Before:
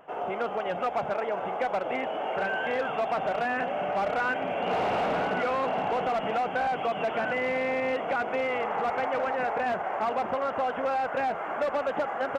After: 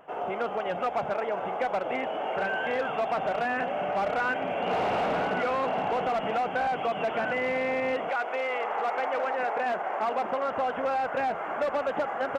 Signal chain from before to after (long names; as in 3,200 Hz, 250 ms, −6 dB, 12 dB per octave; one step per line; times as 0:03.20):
0:08.09–0:10.47: high-pass filter 530 Hz → 180 Hz 12 dB per octave